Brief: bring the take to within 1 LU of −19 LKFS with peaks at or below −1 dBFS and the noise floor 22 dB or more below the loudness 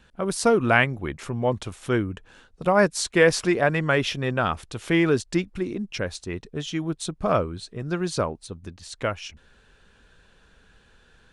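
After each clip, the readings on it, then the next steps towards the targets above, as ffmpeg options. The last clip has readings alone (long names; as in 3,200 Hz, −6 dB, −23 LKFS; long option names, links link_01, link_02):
integrated loudness −24.5 LKFS; sample peak −3.5 dBFS; target loudness −19.0 LKFS
→ -af "volume=5.5dB,alimiter=limit=-1dB:level=0:latency=1"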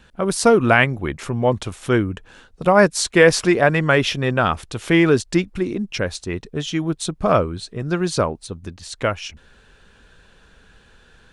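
integrated loudness −19.0 LKFS; sample peak −1.0 dBFS; background noise floor −53 dBFS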